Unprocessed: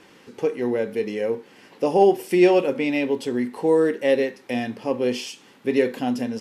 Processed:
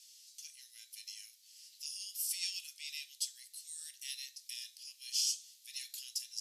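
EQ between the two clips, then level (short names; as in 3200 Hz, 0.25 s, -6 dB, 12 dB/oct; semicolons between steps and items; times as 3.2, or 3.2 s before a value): inverse Chebyshev high-pass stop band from 830 Hz, stop band 80 dB; +6.0 dB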